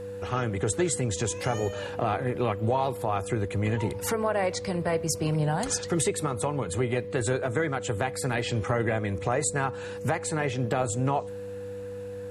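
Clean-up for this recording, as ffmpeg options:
-af "bandreject=f=99.6:t=h:w=4,bandreject=f=199.2:t=h:w=4,bandreject=f=298.8:t=h:w=4,bandreject=f=490:w=30"

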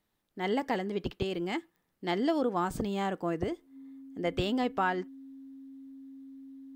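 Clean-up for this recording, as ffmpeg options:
-af "adeclick=t=4,bandreject=f=270:w=30"

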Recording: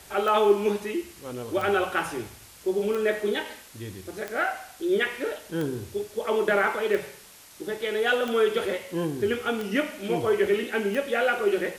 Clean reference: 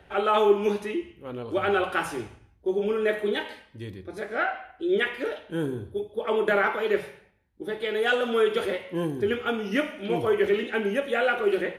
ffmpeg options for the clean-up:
-af "adeclick=t=4,afwtdn=0.004"

